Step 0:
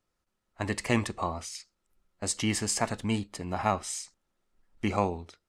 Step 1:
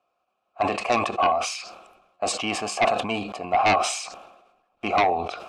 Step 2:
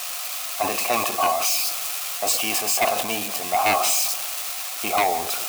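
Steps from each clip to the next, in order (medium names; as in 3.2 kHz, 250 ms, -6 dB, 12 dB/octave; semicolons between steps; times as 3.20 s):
vowel filter a; sine folder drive 10 dB, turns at -21.5 dBFS; decay stretcher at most 56 dB/s; trim +7 dB
zero-crossing glitches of -16 dBFS; bass shelf 280 Hz -6.5 dB; filtered feedback delay 167 ms, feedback 43%, level -15 dB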